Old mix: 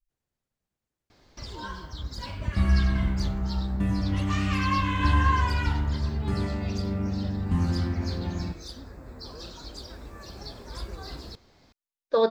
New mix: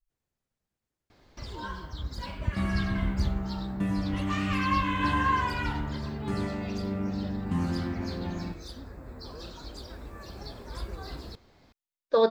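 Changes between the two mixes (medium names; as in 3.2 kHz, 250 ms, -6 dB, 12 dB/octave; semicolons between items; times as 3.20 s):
first sound: add peaking EQ 5.7 kHz -5.5 dB 1.1 oct; second sound: add high-pass 140 Hz 12 dB/octave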